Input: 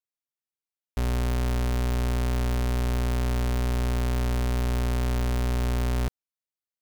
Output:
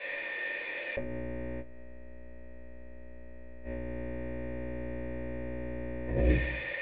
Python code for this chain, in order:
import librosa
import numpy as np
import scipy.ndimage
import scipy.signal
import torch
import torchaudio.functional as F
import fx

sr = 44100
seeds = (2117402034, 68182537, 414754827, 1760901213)

y = x + 0.5 * 10.0 ** (-35.0 / 20.0) * np.diff(np.sign(x), prepend=np.sign(x[:1]))
y = fx.small_body(y, sr, hz=(310.0, 520.0, 950.0), ring_ms=25, db=7)
y = fx.leveller(y, sr, passes=2)
y = fx.formant_cascade(y, sr, vowel='e')
y = fx.low_shelf(y, sr, hz=180.0, db=-6.0)
y = fx.echo_heads(y, sr, ms=67, heads='all three', feedback_pct=42, wet_db=-6.5, at=(1.6, 3.63), fade=0.02)
y = fx.room_shoebox(y, sr, seeds[0], volume_m3=380.0, walls='furnished', distance_m=5.8)
y = fx.over_compress(y, sr, threshold_db=-46.0, ratio=-1.0)
y = fx.peak_eq(y, sr, hz=310.0, db=5.0, octaves=0.49)
y = fx.notch(y, sr, hz=1300.0, q=8.2)
y = y * 10.0 ** (8.0 / 20.0)